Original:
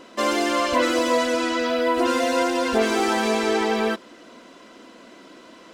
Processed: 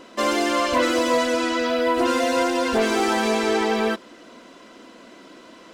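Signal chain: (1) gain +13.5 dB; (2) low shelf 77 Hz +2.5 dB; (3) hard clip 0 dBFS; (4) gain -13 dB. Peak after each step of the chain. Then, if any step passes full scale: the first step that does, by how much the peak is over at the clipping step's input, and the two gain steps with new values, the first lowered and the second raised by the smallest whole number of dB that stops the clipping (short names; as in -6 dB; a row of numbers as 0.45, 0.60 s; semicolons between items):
+6.5, +7.0, 0.0, -13.0 dBFS; step 1, 7.0 dB; step 1 +6.5 dB, step 4 -6 dB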